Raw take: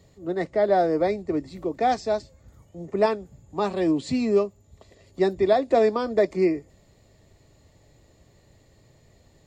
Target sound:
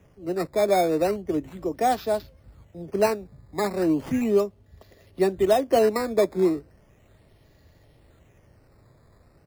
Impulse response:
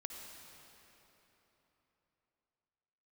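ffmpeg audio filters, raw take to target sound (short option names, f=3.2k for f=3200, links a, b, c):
-filter_complex "[0:a]acrossover=split=110|730[a][b][c];[a]asplit=2[d][e];[e]adelay=38,volume=-3.5dB[f];[d][f]amix=inputs=2:normalize=0[g];[c]acrusher=samples=10:mix=1:aa=0.000001:lfo=1:lforange=10:lforate=0.36[h];[g][b][h]amix=inputs=3:normalize=0"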